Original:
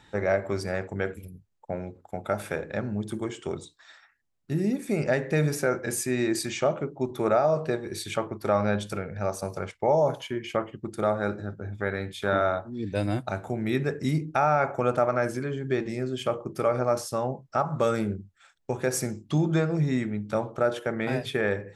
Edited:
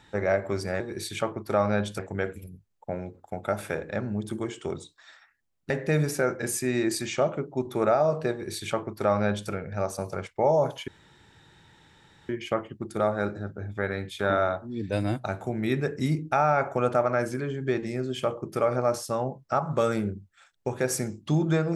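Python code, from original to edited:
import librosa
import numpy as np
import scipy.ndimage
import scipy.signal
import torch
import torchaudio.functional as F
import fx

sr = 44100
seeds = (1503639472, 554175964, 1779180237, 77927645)

y = fx.edit(x, sr, fx.cut(start_s=4.51, length_s=0.63),
    fx.duplicate(start_s=7.75, length_s=1.19, to_s=0.8),
    fx.insert_room_tone(at_s=10.32, length_s=1.41), tone=tone)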